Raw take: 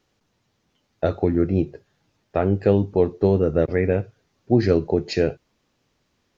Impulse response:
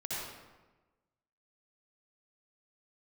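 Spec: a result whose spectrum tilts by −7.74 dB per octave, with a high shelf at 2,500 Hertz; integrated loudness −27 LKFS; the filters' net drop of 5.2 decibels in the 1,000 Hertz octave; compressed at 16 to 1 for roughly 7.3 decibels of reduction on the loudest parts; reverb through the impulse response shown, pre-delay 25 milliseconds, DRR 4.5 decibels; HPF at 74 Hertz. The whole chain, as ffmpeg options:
-filter_complex "[0:a]highpass=74,equalizer=frequency=1000:width_type=o:gain=-7.5,highshelf=frequency=2500:gain=-6,acompressor=threshold=-20dB:ratio=16,asplit=2[link_01][link_02];[1:a]atrim=start_sample=2205,adelay=25[link_03];[link_02][link_03]afir=irnorm=-1:irlink=0,volume=-8dB[link_04];[link_01][link_04]amix=inputs=2:normalize=0"

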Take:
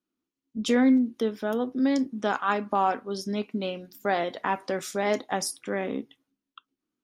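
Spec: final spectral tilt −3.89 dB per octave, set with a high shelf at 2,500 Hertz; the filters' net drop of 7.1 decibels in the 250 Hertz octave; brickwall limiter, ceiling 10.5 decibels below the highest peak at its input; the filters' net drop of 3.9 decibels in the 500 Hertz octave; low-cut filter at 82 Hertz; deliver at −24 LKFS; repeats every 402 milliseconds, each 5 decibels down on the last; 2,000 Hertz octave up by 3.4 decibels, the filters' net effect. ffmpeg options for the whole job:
ffmpeg -i in.wav -af "highpass=82,equalizer=frequency=250:width_type=o:gain=-7,equalizer=frequency=500:width_type=o:gain=-3,equalizer=frequency=2000:width_type=o:gain=7.5,highshelf=frequency=2500:gain=-7,alimiter=limit=-22dB:level=0:latency=1,aecho=1:1:402|804|1206|1608|2010|2412|2814:0.562|0.315|0.176|0.0988|0.0553|0.031|0.0173,volume=9dB" out.wav

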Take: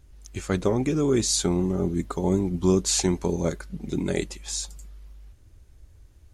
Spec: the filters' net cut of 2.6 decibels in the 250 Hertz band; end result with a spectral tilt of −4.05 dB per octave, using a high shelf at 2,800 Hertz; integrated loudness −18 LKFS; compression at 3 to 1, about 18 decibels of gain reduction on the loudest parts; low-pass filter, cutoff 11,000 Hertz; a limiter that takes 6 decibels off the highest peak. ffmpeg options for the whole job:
ffmpeg -i in.wav -af "lowpass=11000,equalizer=frequency=250:width_type=o:gain=-4,highshelf=frequency=2800:gain=7,acompressor=threshold=-41dB:ratio=3,volume=23.5dB,alimiter=limit=-6dB:level=0:latency=1" out.wav

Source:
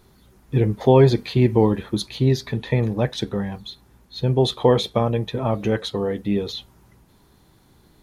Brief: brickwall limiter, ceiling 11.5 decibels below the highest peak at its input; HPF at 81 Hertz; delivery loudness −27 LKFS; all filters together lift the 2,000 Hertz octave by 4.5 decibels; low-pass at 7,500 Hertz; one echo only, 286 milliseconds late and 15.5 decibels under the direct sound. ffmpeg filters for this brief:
ffmpeg -i in.wav -af "highpass=81,lowpass=7500,equalizer=frequency=2000:width_type=o:gain=5.5,alimiter=limit=-14dB:level=0:latency=1,aecho=1:1:286:0.168,volume=-1.5dB" out.wav

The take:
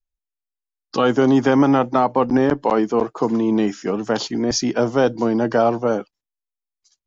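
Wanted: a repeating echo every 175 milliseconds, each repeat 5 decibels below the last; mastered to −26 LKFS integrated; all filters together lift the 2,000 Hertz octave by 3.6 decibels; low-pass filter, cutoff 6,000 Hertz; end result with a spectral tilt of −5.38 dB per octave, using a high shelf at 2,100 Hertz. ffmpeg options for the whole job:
ffmpeg -i in.wav -af "lowpass=6000,equalizer=frequency=2000:width_type=o:gain=8.5,highshelf=frequency=2100:gain=-6,aecho=1:1:175|350|525|700|875|1050|1225:0.562|0.315|0.176|0.0988|0.0553|0.031|0.0173,volume=-9dB" out.wav

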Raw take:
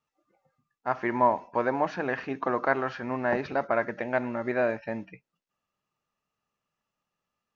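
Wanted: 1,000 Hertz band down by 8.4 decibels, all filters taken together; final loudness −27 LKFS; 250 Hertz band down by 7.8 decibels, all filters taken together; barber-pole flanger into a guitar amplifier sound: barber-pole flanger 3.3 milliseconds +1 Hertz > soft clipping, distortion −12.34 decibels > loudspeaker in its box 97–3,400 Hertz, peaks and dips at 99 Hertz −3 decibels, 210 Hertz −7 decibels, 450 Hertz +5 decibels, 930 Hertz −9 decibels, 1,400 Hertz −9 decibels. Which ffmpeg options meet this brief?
ffmpeg -i in.wav -filter_complex "[0:a]equalizer=frequency=250:width_type=o:gain=-8.5,equalizer=frequency=1000:width_type=o:gain=-3,asplit=2[link_01][link_02];[link_02]adelay=3.3,afreqshift=1[link_03];[link_01][link_03]amix=inputs=2:normalize=1,asoftclip=threshold=-27dB,highpass=97,equalizer=frequency=99:width_type=q:width=4:gain=-3,equalizer=frequency=210:width_type=q:width=4:gain=-7,equalizer=frequency=450:width_type=q:width=4:gain=5,equalizer=frequency=930:width_type=q:width=4:gain=-9,equalizer=frequency=1400:width_type=q:width=4:gain=-9,lowpass=frequency=3400:width=0.5412,lowpass=frequency=3400:width=1.3066,volume=11dB" out.wav

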